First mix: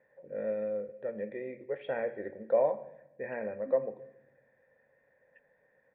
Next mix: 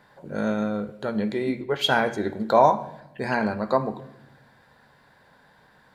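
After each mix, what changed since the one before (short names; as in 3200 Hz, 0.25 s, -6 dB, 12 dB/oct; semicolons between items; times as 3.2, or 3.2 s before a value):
second voice: entry -2.20 s; master: remove vocal tract filter e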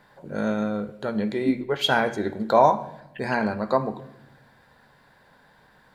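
second voice +7.0 dB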